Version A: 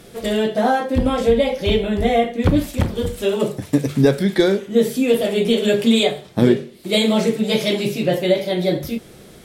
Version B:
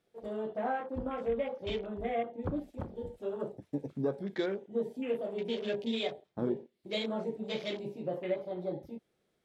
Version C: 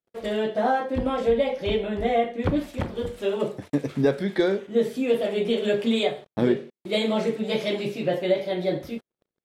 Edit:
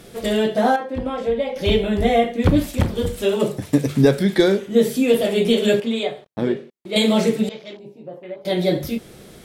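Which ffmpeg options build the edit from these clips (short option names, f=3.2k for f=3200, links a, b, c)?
-filter_complex "[2:a]asplit=2[a][b];[0:a]asplit=4[c][d][e][f];[c]atrim=end=0.762[g];[a]atrim=start=0.758:end=1.562[h];[d]atrim=start=1.558:end=5.802[i];[b]atrim=start=5.798:end=6.962[j];[e]atrim=start=6.958:end=7.492[k];[1:a]atrim=start=7.488:end=8.452[l];[f]atrim=start=8.448[m];[g][h]acrossfade=d=0.004:c1=hsin:c2=hsin[n];[n][i]acrossfade=d=0.004:c1=hsin:c2=hsin[o];[o][j]acrossfade=d=0.004:c1=hsin:c2=hsin[p];[p][k]acrossfade=d=0.004:c1=hsin:c2=hsin[q];[q][l]acrossfade=d=0.004:c1=hsin:c2=hsin[r];[r][m]acrossfade=d=0.004:c1=hsin:c2=hsin"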